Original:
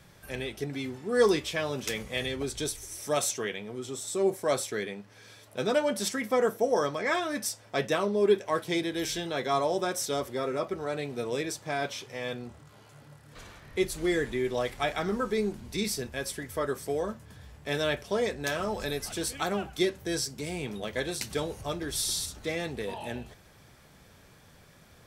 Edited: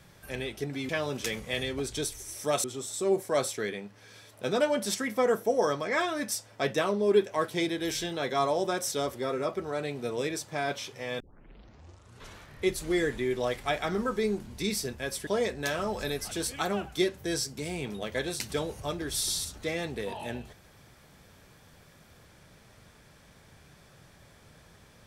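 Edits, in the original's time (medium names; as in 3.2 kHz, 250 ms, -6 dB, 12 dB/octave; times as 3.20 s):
0.89–1.52 s: delete
3.27–3.78 s: delete
12.34 s: tape start 1.16 s
16.41–18.08 s: delete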